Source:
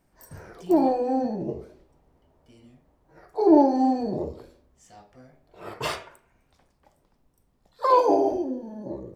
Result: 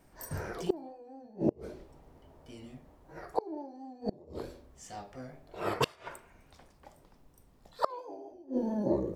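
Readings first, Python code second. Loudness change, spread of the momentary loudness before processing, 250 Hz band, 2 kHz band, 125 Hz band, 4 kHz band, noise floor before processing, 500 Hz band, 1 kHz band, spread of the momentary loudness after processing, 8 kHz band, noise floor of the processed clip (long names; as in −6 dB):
−13.5 dB, 19 LU, −12.0 dB, −3.5 dB, 0.0 dB, −3.5 dB, −68 dBFS, −11.0 dB, −14.0 dB, 19 LU, can't be measured, −62 dBFS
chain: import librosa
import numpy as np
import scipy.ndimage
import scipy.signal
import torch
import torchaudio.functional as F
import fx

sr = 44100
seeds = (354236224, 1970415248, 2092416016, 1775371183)

y = fx.hum_notches(x, sr, base_hz=60, count=4)
y = fx.gate_flip(y, sr, shuts_db=-20.0, range_db=-31)
y = fx.vibrato(y, sr, rate_hz=4.5, depth_cents=34.0)
y = y * 10.0 ** (6.0 / 20.0)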